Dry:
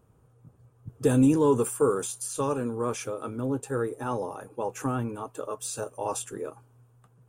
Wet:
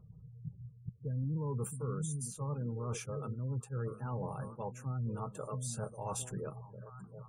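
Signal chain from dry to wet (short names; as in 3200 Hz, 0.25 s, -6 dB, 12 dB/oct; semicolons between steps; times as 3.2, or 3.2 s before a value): resonant low shelf 220 Hz +9 dB, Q 3; delay with a stepping band-pass 0.673 s, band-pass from 180 Hz, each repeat 1.4 oct, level -10 dB; spectral gate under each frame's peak -30 dB strong; reverse; compressor 6:1, threshold -31 dBFS, peak gain reduction 18.5 dB; reverse; attack slew limiter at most 400 dB/s; gain -4 dB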